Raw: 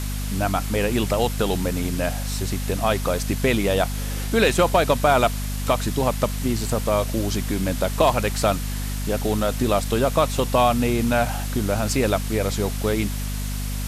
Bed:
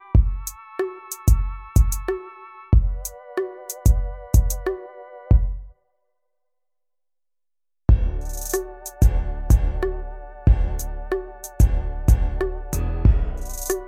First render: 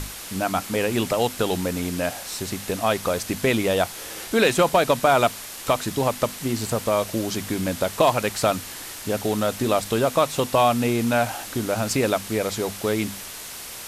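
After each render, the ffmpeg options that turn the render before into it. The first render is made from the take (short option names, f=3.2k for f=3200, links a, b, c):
-af "bandreject=f=50:t=h:w=6,bandreject=f=100:t=h:w=6,bandreject=f=150:t=h:w=6,bandreject=f=200:t=h:w=6,bandreject=f=250:t=h:w=6"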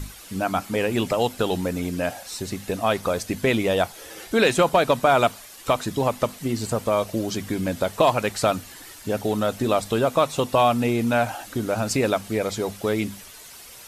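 -af "afftdn=nr=10:nf=-37"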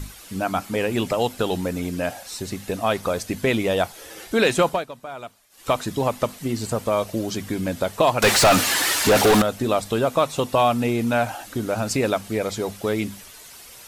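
-filter_complex "[0:a]asettb=1/sr,asplit=3[a][b][c];[a]atrim=end=8.224[d];[b]atrim=start=8.22:end=9.42,asetpts=PTS-STARTPTS,afade=t=in:d=0.004:c=qsin,afade=t=out:st=1.196:d=0.004:c=qsin,asplit=2[e][f];[f]highpass=f=720:p=1,volume=33dB,asoftclip=type=tanh:threshold=-7.5dB[g];[e][g]amix=inputs=2:normalize=0,lowpass=f=5.7k:p=1,volume=-6dB[h];[c]atrim=start=9.416[i];[d][h]acrossfade=d=0.004:c1=hsin:c2=qsin[j];[j][i]acrossfade=d=0.004:c1=qsin:c2=hsin,asplit=3[k][l][m];[k]atrim=end=4.86,asetpts=PTS-STARTPTS,afade=t=out:st=4.65:d=0.21:silence=0.133352[n];[l]atrim=start=4.86:end=5.5,asetpts=PTS-STARTPTS,volume=-17.5dB[o];[m]atrim=start=5.5,asetpts=PTS-STARTPTS,afade=t=in:d=0.21:silence=0.133352[p];[n][o][p]concat=n=3:v=0:a=1"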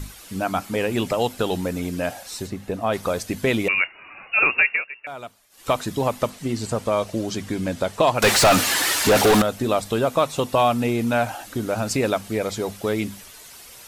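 -filter_complex "[0:a]asplit=3[a][b][c];[a]afade=t=out:st=2.46:d=0.02[d];[b]highshelf=f=2.3k:g=-11,afade=t=in:st=2.46:d=0.02,afade=t=out:st=2.92:d=0.02[e];[c]afade=t=in:st=2.92:d=0.02[f];[d][e][f]amix=inputs=3:normalize=0,asettb=1/sr,asplit=3[g][h][i];[g]atrim=end=3.684[j];[h]atrim=start=3.68:end=5.07,asetpts=PTS-STARTPTS,afade=t=in:d=0.004:c=qsin,afade=t=out:st=1.386:d=0.004:c=qsin,lowpass=f=2.5k:t=q:w=0.5098,lowpass=f=2.5k:t=q:w=0.6013,lowpass=f=2.5k:t=q:w=0.9,lowpass=f=2.5k:t=q:w=2.563,afreqshift=-2900[k];[i]atrim=start=5.066[l];[j][k]acrossfade=d=0.004:c1=hsin:c2=qsin[m];[m][l]acrossfade=d=0.004:c1=qsin:c2=hsin,asettb=1/sr,asplit=3[n][o][p];[n]atrim=end=6.304[q];[o]atrim=start=6.3:end=8.15,asetpts=PTS-STARTPTS,afade=t=in:d=0.004:c=qsin,afade=t=out:st=1.846:d=0.004:c=qsin,lowpass=10k[r];[p]atrim=start=8.146[s];[q][r]acrossfade=d=0.004:c1=hsin:c2=qsin[t];[t][s]acrossfade=d=0.004:c1=qsin:c2=hsin"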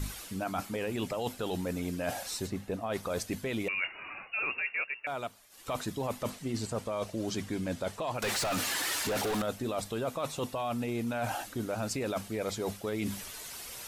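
-af "alimiter=limit=-15dB:level=0:latency=1:release=14,areverse,acompressor=threshold=-31dB:ratio=6,areverse"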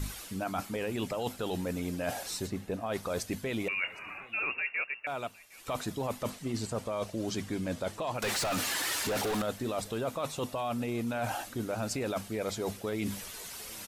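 -af "aecho=1:1:762:0.0668"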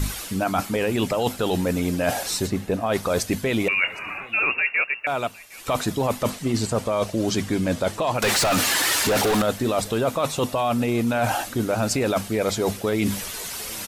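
-af "volume=11dB"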